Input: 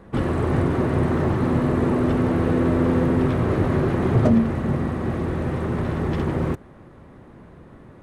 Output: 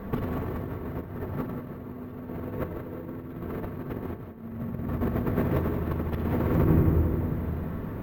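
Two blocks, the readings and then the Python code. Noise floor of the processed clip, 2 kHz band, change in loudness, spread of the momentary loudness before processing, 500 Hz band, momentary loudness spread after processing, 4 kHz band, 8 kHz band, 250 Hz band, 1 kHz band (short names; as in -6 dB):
-40 dBFS, -10.0 dB, -8.5 dB, 6 LU, -9.0 dB, 14 LU, under -10 dB, n/a, -9.0 dB, -9.5 dB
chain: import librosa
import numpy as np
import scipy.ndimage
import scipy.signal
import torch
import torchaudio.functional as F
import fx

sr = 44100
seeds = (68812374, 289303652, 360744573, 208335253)

y = fx.lowpass(x, sr, hz=3200.0, slope=6)
y = fx.peak_eq(y, sr, hz=87.0, db=5.5, octaves=0.36)
y = fx.room_shoebox(y, sr, seeds[0], volume_m3=2500.0, walls='mixed', distance_m=1.6)
y = fx.over_compress(y, sr, threshold_db=-25.0, ratio=-0.5)
y = fx.echo_feedback(y, sr, ms=175, feedback_pct=56, wet_db=-9.5)
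y = np.repeat(y[::3], 3)[:len(y)]
y = y * librosa.db_to_amplitude(-3.0)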